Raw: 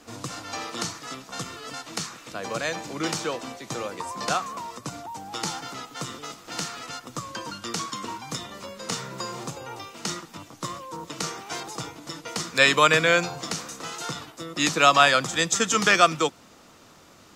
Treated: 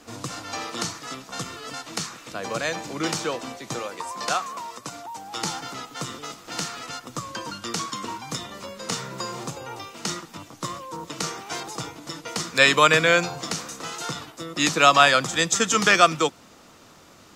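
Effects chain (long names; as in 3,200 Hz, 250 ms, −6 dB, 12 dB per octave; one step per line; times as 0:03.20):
0:03.79–0:05.37: low-shelf EQ 270 Hz −10.5 dB
level +1.5 dB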